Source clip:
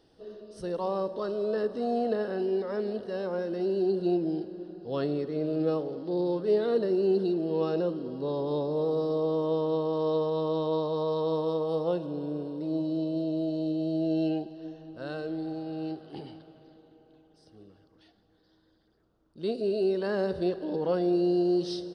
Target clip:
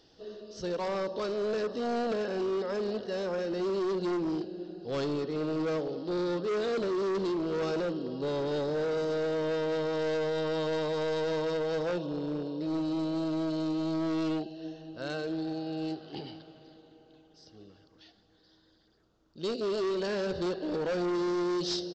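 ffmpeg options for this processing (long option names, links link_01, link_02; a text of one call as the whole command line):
ffmpeg -i in.wav -af "highshelf=frequency=2300:gain=10,aresample=16000,asoftclip=type=hard:threshold=-28dB,aresample=44100" out.wav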